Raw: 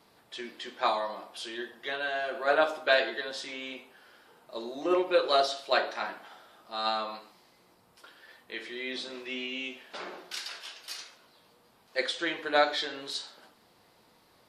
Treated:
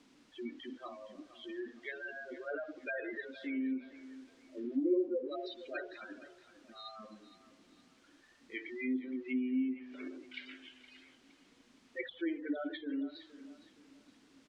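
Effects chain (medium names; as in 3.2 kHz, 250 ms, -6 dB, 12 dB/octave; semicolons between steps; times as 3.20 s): in parallel at -4 dB: hard clipper -19.5 dBFS, distortion -15 dB; on the sum: spectral gate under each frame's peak -10 dB strong; level-controlled noise filter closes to 1.2 kHz, open at -21 dBFS; vowel filter i; added noise white -71 dBFS; low-pass that closes with the level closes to 890 Hz, closed at -39.5 dBFS; distance through air 110 m; on a send: feedback delay 466 ms, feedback 35%, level -15.5 dB; on the sum: trim +8.5 dB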